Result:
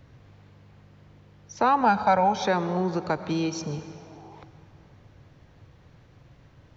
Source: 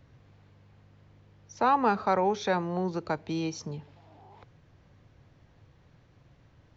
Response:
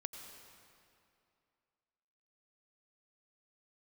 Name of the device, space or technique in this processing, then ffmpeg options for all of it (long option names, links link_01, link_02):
compressed reverb return: -filter_complex "[0:a]asplit=2[link_01][link_02];[1:a]atrim=start_sample=2205[link_03];[link_02][link_03]afir=irnorm=-1:irlink=0,acompressor=threshold=-31dB:ratio=6,volume=2dB[link_04];[link_01][link_04]amix=inputs=2:normalize=0,asettb=1/sr,asplit=3[link_05][link_06][link_07];[link_05]atrim=end=1.814[link_08];[link_06]atrim=start=1.81:end=2.45,asetpts=PTS-STARTPTS,afade=type=in:duration=0.004:curve=qsin,afade=type=out:start_time=0.636:duration=0.004:curve=qsin,aecho=1:1:1.3:0.73,atrim=end_sample=28224[link_09];[link_07]atrim=start=2.446[link_10];[link_08][link_09]acrossfade=duration=0.004:curve1=hsin:curve2=qsin[link_11];[link_11][link_10]acrossfade=duration=0.004:curve1=qsin:curve2=hsin"